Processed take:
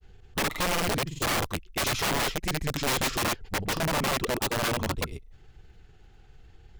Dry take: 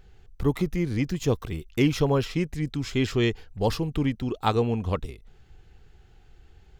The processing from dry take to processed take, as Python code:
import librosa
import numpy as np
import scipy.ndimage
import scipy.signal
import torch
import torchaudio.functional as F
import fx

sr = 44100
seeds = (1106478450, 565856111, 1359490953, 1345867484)

y = fx.granulator(x, sr, seeds[0], grain_ms=100.0, per_s=20.0, spray_ms=100.0, spread_st=0)
y = (np.mod(10.0 ** (23.5 / 20.0) * y + 1.0, 2.0) - 1.0) / 10.0 ** (23.5 / 20.0)
y = y * librosa.db_to_amplitude(2.0)